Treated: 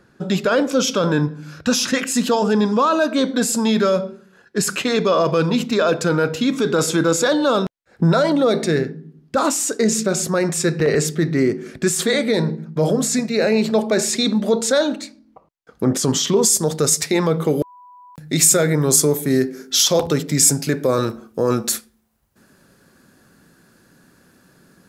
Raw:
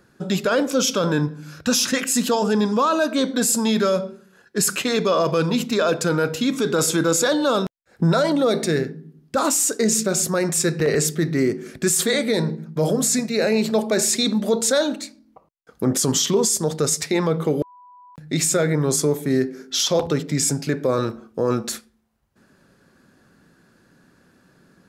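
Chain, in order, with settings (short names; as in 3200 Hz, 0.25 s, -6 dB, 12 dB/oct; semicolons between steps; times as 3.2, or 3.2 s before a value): high shelf 7900 Hz -9.5 dB, from 16.42 s +5 dB, from 17.49 s +11.5 dB; gain +2.5 dB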